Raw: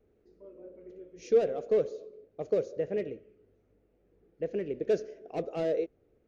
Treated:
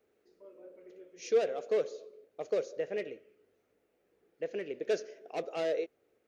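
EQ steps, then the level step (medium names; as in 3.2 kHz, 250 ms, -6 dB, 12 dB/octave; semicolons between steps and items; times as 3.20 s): high-pass 1.2 kHz 6 dB/octave; +5.5 dB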